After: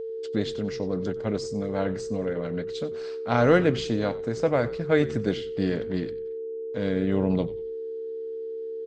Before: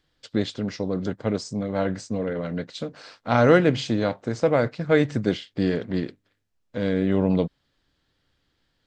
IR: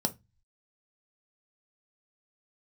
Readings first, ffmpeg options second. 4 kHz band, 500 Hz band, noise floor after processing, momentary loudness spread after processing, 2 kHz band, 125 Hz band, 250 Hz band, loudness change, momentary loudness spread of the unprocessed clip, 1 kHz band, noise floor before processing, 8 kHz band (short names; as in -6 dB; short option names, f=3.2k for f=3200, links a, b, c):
-3.0 dB, -1.0 dB, -34 dBFS, 11 LU, -3.0 dB, -3.0 dB, -3.0 dB, -3.0 dB, 12 LU, -3.0 dB, -73 dBFS, n/a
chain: -filter_complex "[0:a]aeval=exprs='val(0)+0.0398*sin(2*PI*450*n/s)':c=same,asplit=4[a][b][c][d];[b]adelay=93,afreqshift=-69,volume=-17.5dB[e];[c]adelay=186,afreqshift=-138,volume=-26.9dB[f];[d]adelay=279,afreqshift=-207,volume=-36.2dB[g];[a][e][f][g]amix=inputs=4:normalize=0,volume=-3dB"